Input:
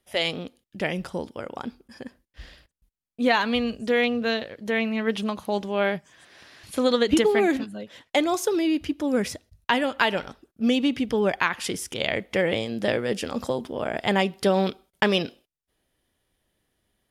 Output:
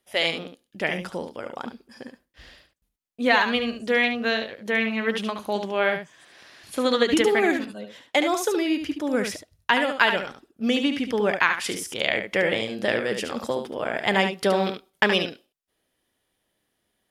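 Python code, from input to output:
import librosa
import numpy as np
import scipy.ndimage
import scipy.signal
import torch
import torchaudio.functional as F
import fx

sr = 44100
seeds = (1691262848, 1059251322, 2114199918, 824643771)

y = fx.low_shelf(x, sr, hz=120.0, db=-12.0)
y = y + 10.0 ** (-7.5 / 20.0) * np.pad(y, (int(72 * sr / 1000.0), 0))[:len(y)]
y = fx.dynamic_eq(y, sr, hz=1800.0, q=1.1, threshold_db=-39.0, ratio=4.0, max_db=4)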